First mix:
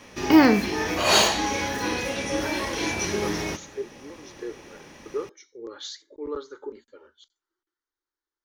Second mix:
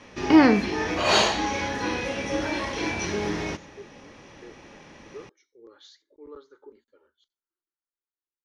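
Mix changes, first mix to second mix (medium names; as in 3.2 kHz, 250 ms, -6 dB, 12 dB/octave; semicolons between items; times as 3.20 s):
speech -11.5 dB; master: add distance through air 86 m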